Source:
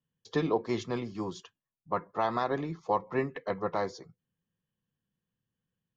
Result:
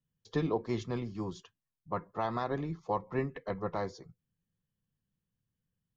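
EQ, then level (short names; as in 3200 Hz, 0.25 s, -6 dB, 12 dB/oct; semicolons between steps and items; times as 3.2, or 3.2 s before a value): low shelf 67 Hz +6 dB; low shelf 170 Hz +9 dB; -5.0 dB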